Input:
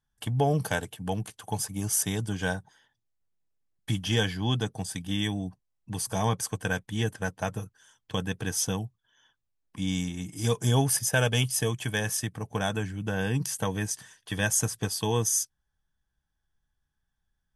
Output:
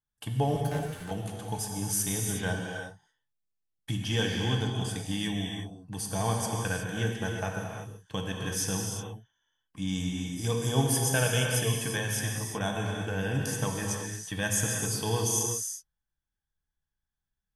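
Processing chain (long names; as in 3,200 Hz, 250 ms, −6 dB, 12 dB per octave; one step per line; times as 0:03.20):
noise gate −53 dBFS, range −7 dB
0:00.56–0:01.11: tube saturation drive 32 dB, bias 0.55
reverb whose tail is shaped and stops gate 390 ms flat, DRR 0 dB
level −4 dB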